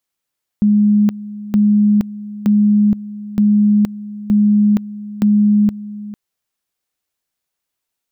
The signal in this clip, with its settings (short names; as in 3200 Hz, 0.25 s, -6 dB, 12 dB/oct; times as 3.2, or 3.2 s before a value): two-level tone 208 Hz -8.5 dBFS, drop 17 dB, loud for 0.47 s, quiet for 0.45 s, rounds 6